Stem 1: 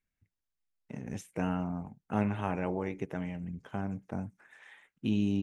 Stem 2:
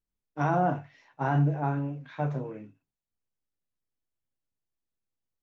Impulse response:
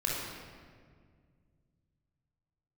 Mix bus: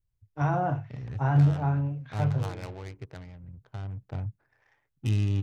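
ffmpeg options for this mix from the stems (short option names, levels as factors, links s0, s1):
-filter_complex "[0:a]adynamicsmooth=sensitivity=5.5:basefreq=510,crystalizer=i=7:c=0,volume=2,afade=t=out:st=0.9:d=0.51:silence=0.421697,afade=t=in:st=3.8:d=0.5:silence=0.421697[s0];[1:a]volume=0.794[s1];[s0][s1]amix=inputs=2:normalize=0,lowshelf=f=150:t=q:w=3:g=8.5"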